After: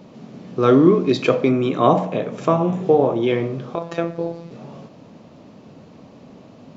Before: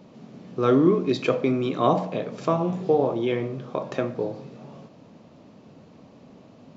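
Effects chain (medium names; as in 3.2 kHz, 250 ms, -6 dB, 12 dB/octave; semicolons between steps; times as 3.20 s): 1.49–3.23 s: peaking EQ 4.6 kHz -8 dB 0.46 oct; 3.75–4.51 s: robot voice 168 Hz; trim +5.5 dB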